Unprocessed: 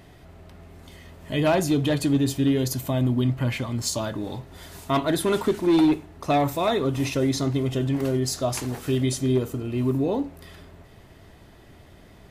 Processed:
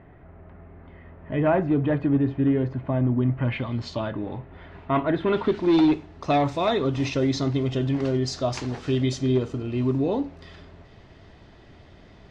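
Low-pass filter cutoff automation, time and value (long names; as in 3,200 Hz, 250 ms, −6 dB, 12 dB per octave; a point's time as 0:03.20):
low-pass filter 24 dB per octave
0:03.27 2,000 Hz
0:03.75 4,100 Hz
0:04.28 2,500 Hz
0:05.14 2,500 Hz
0:05.74 5,700 Hz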